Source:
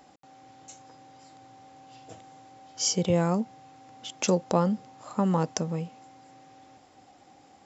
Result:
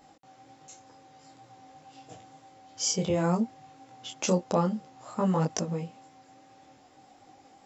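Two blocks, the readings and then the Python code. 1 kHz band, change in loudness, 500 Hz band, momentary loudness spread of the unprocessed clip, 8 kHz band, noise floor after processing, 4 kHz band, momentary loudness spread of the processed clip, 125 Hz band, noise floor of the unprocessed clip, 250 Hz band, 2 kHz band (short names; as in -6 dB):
-1.5 dB, -1.5 dB, -1.5 dB, 16 LU, n/a, -58 dBFS, -2.0 dB, 13 LU, -1.5 dB, -57 dBFS, -1.5 dB, -1.0 dB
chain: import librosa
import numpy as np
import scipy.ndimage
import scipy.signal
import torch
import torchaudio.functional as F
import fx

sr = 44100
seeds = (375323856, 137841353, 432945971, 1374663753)

y = fx.wow_flutter(x, sr, seeds[0], rate_hz=2.1, depth_cents=16.0)
y = fx.detune_double(y, sr, cents=19)
y = y * 10.0 ** (2.5 / 20.0)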